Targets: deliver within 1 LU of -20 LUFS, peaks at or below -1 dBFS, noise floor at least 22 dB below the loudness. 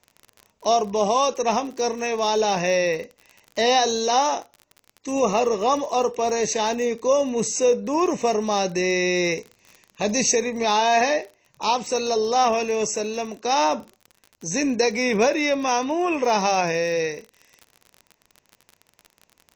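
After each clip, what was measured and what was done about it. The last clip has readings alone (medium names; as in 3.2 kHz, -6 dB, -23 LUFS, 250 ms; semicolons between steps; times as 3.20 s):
tick rate 40 per s; loudness -22.0 LUFS; peak level -8.0 dBFS; loudness target -20.0 LUFS
-> de-click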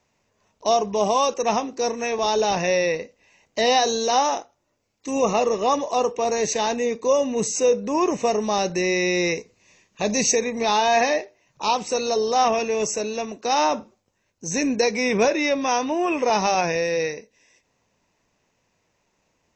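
tick rate 0 per s; loudness -22.0 LUFS; peak level -8.0 dBFS; loudness target -20.0 LUFS
-> trim +2 dB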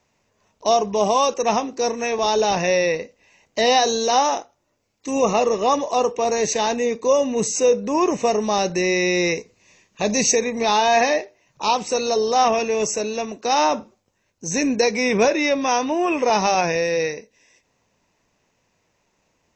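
loudness -20.0 LUFS; peak level -6.0 dBFS; noise floor -69 dBFS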